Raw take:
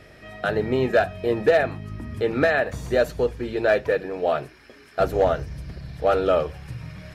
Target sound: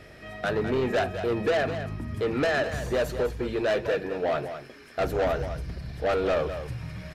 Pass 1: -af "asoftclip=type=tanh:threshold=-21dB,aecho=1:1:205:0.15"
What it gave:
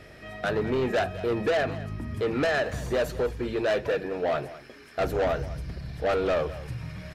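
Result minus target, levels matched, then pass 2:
echo-to-direct -6.5 dB
-af "asoftclip=type=tanh:threshold=-21dB,aecho=1:1:205:0.316"

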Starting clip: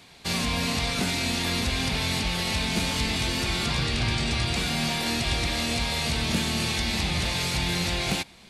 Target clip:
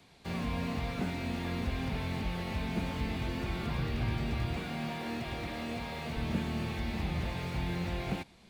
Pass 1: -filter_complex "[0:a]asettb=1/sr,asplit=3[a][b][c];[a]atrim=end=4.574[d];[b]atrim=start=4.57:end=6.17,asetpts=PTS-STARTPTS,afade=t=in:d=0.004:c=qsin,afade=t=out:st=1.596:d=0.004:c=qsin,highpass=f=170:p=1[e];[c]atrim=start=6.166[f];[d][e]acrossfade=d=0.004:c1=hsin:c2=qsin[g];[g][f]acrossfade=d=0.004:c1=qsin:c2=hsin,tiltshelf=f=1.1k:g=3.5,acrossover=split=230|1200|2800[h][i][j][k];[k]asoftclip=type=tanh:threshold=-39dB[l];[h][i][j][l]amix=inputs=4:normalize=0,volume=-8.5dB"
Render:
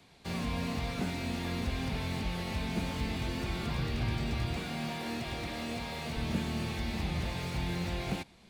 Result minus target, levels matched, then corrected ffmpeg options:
soft clip: distortion -4 dB
-filter_complex "[0:a]asettb=1/sr,asplit=3[a][b][c];[a]atrim=end=4.574[d];[b]atrim=start=4.57:end=6.17,asetpts=PTS-STARTPTS,afade=t=in:d=0.004:c=qsin,afade=t=out:st=1.596:d=0.004:c=qsin,highpass=f=170:p=1[e];[c]atrim=start=6.166[f];[d][e]acrossfade=d=0.004:c1=hsin:c2=qsin[g];[g][f]acrossfade=d=0.004:c1=qsin:c2=hsin,tiltshelf=f=1.1k:g=3.5,acrossover=split=230|1200|2800[h][i][j][k];[k]asoftclip=type=tanh:threshold=-47dB[l];[h][i][j][l]amix=inputs=4:normalize=0,volume=-8.5dB"

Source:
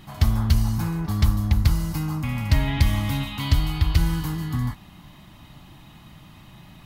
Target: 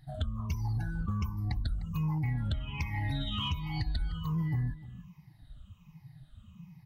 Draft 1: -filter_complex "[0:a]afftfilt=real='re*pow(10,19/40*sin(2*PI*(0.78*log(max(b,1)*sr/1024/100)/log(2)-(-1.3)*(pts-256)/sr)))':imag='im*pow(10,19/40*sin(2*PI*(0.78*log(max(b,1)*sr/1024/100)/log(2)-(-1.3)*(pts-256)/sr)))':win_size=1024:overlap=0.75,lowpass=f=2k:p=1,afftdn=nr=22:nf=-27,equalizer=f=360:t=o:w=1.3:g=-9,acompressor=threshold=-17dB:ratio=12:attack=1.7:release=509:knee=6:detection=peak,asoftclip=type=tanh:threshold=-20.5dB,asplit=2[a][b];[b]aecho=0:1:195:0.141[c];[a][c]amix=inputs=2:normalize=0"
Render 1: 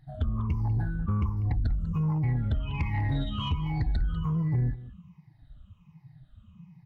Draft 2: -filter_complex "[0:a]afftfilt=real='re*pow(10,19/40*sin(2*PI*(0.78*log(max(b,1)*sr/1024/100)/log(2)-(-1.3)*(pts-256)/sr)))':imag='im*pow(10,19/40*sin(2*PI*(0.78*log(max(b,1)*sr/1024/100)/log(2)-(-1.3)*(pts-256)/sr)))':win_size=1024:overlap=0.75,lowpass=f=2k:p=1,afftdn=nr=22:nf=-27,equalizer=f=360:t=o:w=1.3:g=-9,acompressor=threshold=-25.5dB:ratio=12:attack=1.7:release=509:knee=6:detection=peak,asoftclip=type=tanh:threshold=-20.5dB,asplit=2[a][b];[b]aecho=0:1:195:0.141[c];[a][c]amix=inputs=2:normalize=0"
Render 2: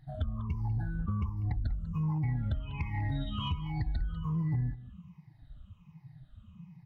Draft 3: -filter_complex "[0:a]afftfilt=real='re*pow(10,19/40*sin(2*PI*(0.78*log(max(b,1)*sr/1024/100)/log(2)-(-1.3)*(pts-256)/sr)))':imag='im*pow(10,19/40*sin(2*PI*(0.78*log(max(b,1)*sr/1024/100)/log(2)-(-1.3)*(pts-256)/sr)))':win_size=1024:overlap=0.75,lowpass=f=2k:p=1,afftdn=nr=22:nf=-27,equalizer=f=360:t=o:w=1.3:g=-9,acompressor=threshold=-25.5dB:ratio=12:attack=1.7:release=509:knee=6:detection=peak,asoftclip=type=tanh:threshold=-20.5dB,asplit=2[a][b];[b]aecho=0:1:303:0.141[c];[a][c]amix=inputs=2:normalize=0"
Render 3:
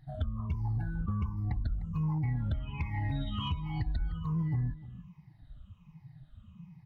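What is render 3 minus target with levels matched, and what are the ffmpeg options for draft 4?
2000 Hz band -4.0 dB
-filter_complex "[0:a]afftfilt=real='re*pow(10,19/40*sin(2*PI*(0.78*log(max(b,1)*sr/1024/100)/log(2)-(-1.3)*(pts-256)/sr)))':imag='im*pow(10,19/40*sin(2*PI*(0.78*log(max(b,1)*sr/1024/100)/log(2)-(-1.3)*(pts-256)/sr)))':win_size=1024:overlap=0.75,afftdn=nr=22:nf=-27,equalizer=f=360:t=o:w=1.3:g=-9,acompressor=threshold=-25.5dB:ratio=12:attack=1.7:release=509:knee=6:detection=peak,asoftclip=type=tanh:threshold=-20.5dB,asplit=2[a][b];[b]aecho=0:1:303:0.141[c];[a][c]amix=inputs=2:normalize=0"

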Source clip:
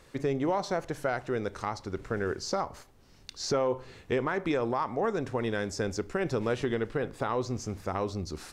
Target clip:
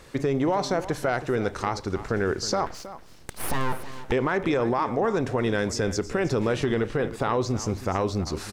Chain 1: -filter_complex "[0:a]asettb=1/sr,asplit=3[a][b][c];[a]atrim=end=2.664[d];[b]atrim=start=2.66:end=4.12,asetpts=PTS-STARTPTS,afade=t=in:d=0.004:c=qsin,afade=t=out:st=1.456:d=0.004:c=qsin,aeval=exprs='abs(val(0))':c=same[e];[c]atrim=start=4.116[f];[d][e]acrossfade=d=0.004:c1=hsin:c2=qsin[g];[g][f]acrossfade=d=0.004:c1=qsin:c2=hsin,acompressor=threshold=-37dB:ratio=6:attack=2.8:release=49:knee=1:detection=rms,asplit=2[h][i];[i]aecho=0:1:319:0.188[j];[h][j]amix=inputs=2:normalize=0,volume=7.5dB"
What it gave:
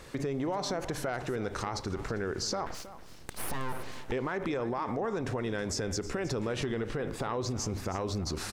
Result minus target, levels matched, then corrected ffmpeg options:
compressor: peak gain reduction +9 dB
-filter_complex "[0:a]asettb=1/sr,asplit=3[a][b][c];[a]atrim=end=2.664[d];[b]atrim=start=2.66:end=4.12,asetpts=PTS-STARTPTS,afade=t=in:d=0.004:c=qsin,afade=t=out:st=1.456:d=0.004:c=qsin,aeval=exprs='abs(val(0))':c=same[e];[c]atrim=start=4.116[f];[d][e]acrossfade=d=0.004:c1=hsin:c2=qsin[g];[g][f]acrossfade=d=0.004:c1=qsin:c2=hsin,acompressor=threshold=-26.5dB:ratio=6:attack=2.8:release=49:knee=1:detection=rms,asplit=2[h][i];[i]aecho=0:1:319:0.188[j];[h][j]amix=inputs=2:normalize=0,volume=7.5dB"

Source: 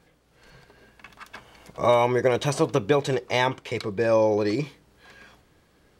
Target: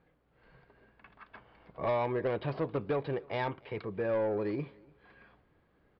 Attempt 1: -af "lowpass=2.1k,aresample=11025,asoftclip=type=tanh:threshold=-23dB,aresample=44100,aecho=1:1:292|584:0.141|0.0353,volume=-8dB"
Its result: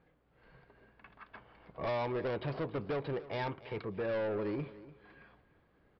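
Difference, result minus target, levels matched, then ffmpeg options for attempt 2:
echo-to-direct +9 dB; soft clip: distortion +7 dB
-af "lowpass=2.1k,aresample=11025,asoftclip=type=tanh:threshold=-16dB,aresample=44100,aecho=1:1:292|584:0.0501|0.0125,volume=-8dB"

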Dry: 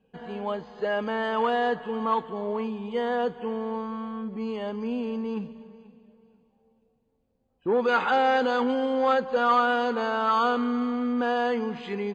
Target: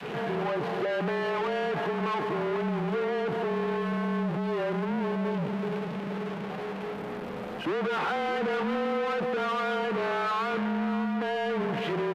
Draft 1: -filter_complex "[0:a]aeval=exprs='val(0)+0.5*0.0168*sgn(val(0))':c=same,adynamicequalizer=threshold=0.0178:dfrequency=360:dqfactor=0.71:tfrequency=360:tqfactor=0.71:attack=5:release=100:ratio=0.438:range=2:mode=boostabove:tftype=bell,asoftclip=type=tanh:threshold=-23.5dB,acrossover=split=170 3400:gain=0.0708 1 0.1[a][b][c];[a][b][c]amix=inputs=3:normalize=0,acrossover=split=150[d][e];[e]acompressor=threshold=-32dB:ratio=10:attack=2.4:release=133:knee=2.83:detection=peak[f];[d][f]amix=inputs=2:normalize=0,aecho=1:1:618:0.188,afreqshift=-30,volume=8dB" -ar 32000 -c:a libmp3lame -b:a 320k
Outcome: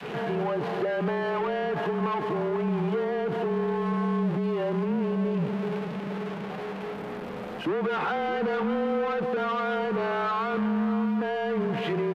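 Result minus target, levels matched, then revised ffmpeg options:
soft clip: distortion -5 dB
-filter_complex "[0:a]aeval=exprs='val(0)+0.5*0.0168*sgn(val(0))':c=same,adynamicequalizer=threshold=0.0178:dfrequency=360:dqfactor=0.71:tfrequency=360:tqfactor=0.71:attack=5:release=100:ratio=0.438:range=2:mode=boostabove:tftype=bell,asoftclip=type=tanh:threshold=-33dB,acrossover=split=170 3400:gain=0.0708 1 0.1[a][b][c];[a][b][c]amix=inputs=3:normalize=0,acrossover=split=150[d][e];[e]acompressor=threshold=-32dB:ratio=10:attack=2.4:release=133:knee=2.83:detection=peak[f];[d][f]amix=inputs=2:normalize=0,aecho=1:1:618:0.188,afreqshift=-30,volume=8dB" -ar 32000 -c:a libmp3lame -b:a 320k

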